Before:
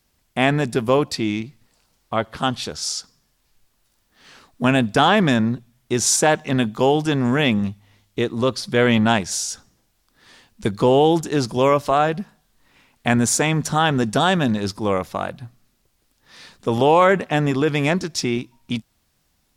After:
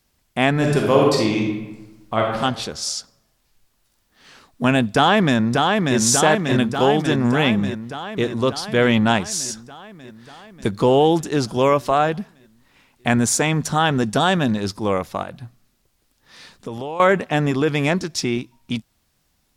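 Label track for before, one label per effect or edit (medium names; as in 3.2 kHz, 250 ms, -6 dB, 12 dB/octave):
0.520000	2.390000	reverb throw, RT60 1.1 s, DRR -1.5 dB
4.910000	5.970000	echo throw 590 ms, feedback 70%, level -3 dB
15.220000	17.000000	compression, threshold -26 dBFS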